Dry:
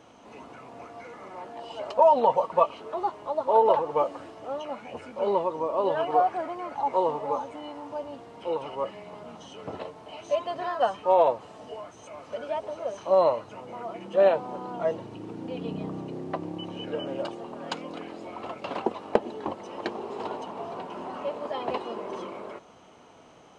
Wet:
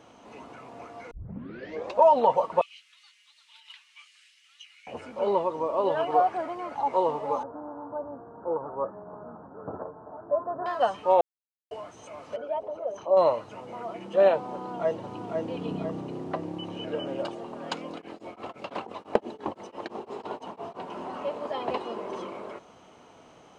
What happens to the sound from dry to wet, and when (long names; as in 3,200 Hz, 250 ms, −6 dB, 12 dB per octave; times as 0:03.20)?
0:01.11: tape start 0.89 s
0:02.61–0:04.87: Butterworth high-pass 2,100 Hz
0:07.43–0:10.66: Butterworth low-pass 1,600 Hz 96 dB per octave
0:11.21–0:11.71: silence
0:12.36–0:13.17: spectral envelope exaggerated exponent 1.5
0:14.53–0:15.29: delay throw 500 ms, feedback 55%, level −4.5 dB
0:17.94–0:20.87: tremolo along a rectified sine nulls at 5.9 Hz